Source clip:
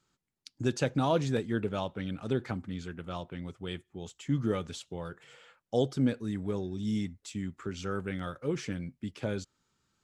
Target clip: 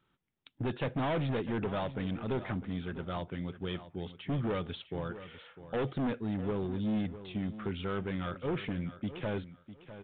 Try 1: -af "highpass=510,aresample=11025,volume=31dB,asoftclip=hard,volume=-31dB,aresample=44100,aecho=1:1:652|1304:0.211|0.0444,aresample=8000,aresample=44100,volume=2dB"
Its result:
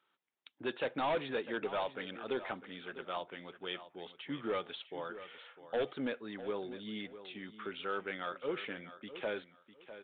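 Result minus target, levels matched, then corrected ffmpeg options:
500 Hz band +3.0 dB
-af "aresample=11025,volume=31dB,asoftclip=hard,volume=-31dB,aresample=44100,aecho=1:1:652|1304:0.211|0.0444,aresample=8000,aresample=44100,volume=2dB"

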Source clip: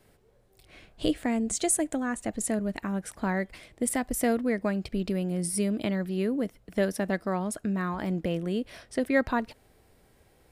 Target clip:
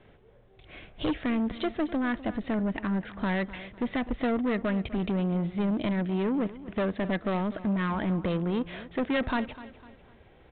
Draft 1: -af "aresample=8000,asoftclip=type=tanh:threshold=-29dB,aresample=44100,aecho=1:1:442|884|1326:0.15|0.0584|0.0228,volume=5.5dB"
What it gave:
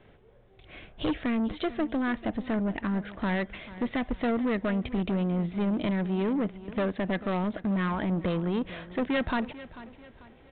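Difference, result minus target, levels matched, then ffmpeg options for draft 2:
echo 191 ms late
-af "aresample=8000,asoftclip=type=tanh:threshold=-29dB,aresample=44100,aecho=1:1:251|502|753:0.15|0.0584|0.0228,volume=5.5dB"

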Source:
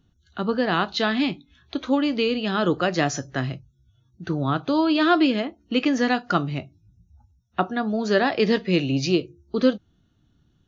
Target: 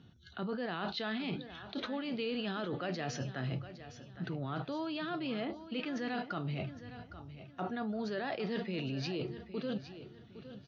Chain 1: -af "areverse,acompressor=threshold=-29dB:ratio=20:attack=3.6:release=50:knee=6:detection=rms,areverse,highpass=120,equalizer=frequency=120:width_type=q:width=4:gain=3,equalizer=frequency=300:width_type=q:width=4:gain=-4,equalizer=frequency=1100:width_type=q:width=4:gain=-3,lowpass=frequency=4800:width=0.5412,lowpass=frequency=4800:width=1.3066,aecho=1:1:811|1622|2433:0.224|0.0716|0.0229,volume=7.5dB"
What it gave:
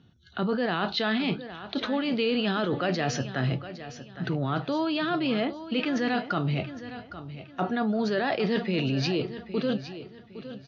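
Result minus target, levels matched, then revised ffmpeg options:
downward compressor: peak gain reduction −10.5 dB
-af "areverse,acompressor=threshold=-40dB:ratio=20:attack=3.6:release=50:knee=6:detection=rms,areverse,highpass=120,equalizer=frequency=120:width_type=q:width=4:gain=3,equalizer=frequency=300:width_type=q:width=4:gain=-4,equalizer=frequency=1100:width_type=q:width=4:gain=-3,lowpass=frequency=4800:width=0.5412,lowpass=frequency=4800:width=1.3066,aecho=1:1:811|1622|2433:0.224|0.0716|0.0229,volume=7.5dB"

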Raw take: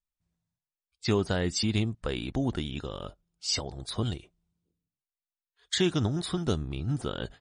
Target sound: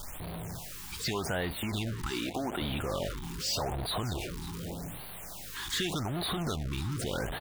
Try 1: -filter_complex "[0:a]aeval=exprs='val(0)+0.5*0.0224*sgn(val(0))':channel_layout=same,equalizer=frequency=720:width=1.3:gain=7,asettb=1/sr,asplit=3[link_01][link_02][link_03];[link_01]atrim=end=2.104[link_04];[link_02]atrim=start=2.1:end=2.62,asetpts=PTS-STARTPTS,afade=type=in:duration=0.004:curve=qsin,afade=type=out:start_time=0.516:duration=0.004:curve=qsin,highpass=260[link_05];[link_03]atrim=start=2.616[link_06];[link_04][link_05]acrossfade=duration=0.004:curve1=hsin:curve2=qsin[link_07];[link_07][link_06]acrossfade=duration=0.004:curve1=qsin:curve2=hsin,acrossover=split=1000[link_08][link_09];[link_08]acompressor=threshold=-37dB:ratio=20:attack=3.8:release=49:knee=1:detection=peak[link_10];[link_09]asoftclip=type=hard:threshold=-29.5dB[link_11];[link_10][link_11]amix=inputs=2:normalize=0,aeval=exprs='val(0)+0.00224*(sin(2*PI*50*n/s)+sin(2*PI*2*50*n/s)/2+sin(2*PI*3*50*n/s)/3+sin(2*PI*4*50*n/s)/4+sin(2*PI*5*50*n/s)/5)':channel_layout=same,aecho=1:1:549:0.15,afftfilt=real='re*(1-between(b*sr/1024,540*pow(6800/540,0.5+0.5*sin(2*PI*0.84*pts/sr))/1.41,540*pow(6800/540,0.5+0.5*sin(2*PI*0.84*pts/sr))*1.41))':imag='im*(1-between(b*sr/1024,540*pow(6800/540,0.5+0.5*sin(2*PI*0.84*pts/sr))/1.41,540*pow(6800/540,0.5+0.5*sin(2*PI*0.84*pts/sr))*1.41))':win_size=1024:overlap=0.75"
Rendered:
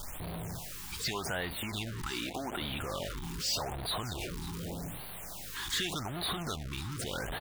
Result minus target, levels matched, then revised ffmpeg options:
downward compressor: peak gain reduction +5.5 dB
-filter_complex "[0:a]aeval=exprs='val(0)+0.5*0.0224*sgn(val(0))':channel_layout=same,equalizer=frequency=720:width=1.3:gain=7,asettb=1/sr,asplit=3[link_01][link_02][link_03];[link_01]atrim=end=2.104[link_04];[link_02]atrim=start=2.1:end=2.62,asetpts=PTS-STARTPTS,afade=type=in:duration=0.004:curve=qsin,afade=type=out:start_time=0.516:duration=0.004:curve=qsin,highpass=260[link_05];[link_03]atrim=start=2.616[link_06];[link_04][link_05]acrossfade=duration=0.004:curve1=hsin:curve2=qsin[link_07];[link_07][link_06]acrossfade=duration=0.004:curve1=qsin:curve2=hsin,acrossover=split=1000[link_08][link_09];[link_08]acompressor=threshold=-31dB:ratio=20:attack=3.8:release=49:knee=1:detection=peak[link_10];[link_09]asoftclip=type=hard:threshold=-29.5dB[link_11];[link_10][link_11]amix=inputs=2:normalize=0,aeval=exprs='val(0)+0.00224*(sin(2*PI*50*n/s)+sin(2*PI*2*50*n/s)/2+sin(2*PI*3*50*n/s)/3+sin(2*PI*4*50*n/s)/4+sin(2*PI*5*50*n/s)/5)':channel_layout=same,aecho=1:1:549:0.15,afftfilt=real='re*(1-between(b*sr/1024,540*pow(6800/540,0.5+0.5*sin(2*PI*0.84*pts/sr))/1.41,540*pow(6800/540,0.5+0.5*sin(2*PI*0.84*pts/sr))*1.41))':imag='im*(1-between(b*sr/1024,540*pow(6800/540,0.5+0.5*sin(2*PI*0.84*pts/sr))/1.41,540*pow(6800/540,0.5+0.5*sin(2*PI*0.84*pts/sr))*1.41))':win_size=1024:overlap=0.75"

